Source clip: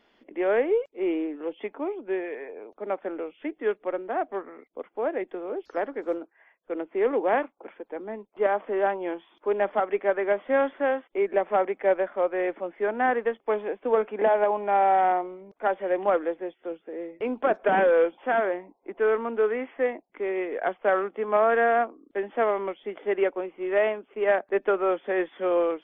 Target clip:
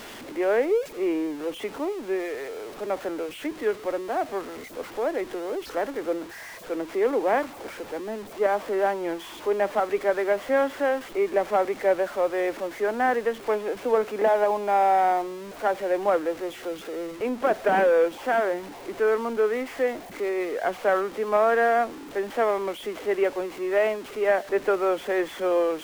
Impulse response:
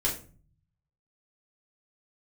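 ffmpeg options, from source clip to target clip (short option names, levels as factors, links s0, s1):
-af "aeval=exprs='val(0)+0.5*0.0168*sgn(val(0))':c=same"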